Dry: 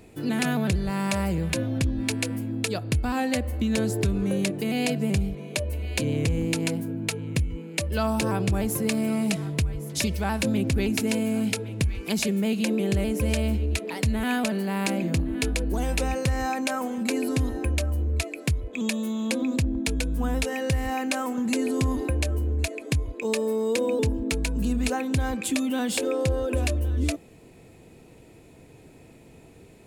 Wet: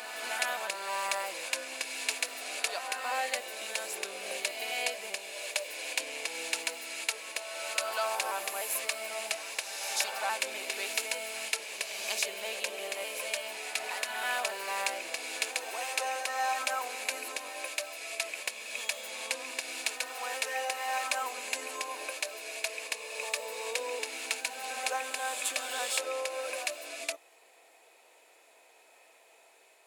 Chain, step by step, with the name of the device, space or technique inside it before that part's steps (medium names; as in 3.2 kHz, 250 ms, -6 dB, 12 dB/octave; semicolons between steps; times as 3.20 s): ghost voice (reverse; reverberation RT60 2.5 s, pre-delay 49 ms, DRR 2.5 dB; reverse; high-pass 640 Hz 24 dB/octave); trim -2.5 dB